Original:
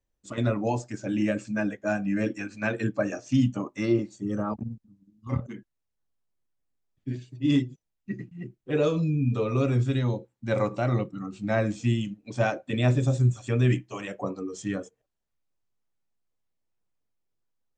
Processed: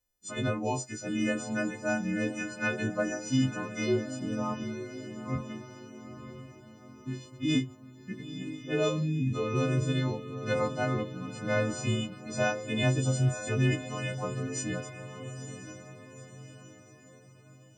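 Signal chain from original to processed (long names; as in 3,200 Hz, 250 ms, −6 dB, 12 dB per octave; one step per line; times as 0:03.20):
every partial snapped to a pitch grid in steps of 3 semitones
feedback delay with all-pass diffusion 942 ms, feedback 47%, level −10 dB
level −4 dB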